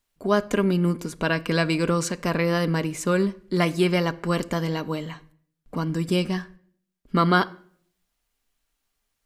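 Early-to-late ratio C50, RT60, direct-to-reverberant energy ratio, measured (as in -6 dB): 20.0 dB, 0.55 s, 9.5 dB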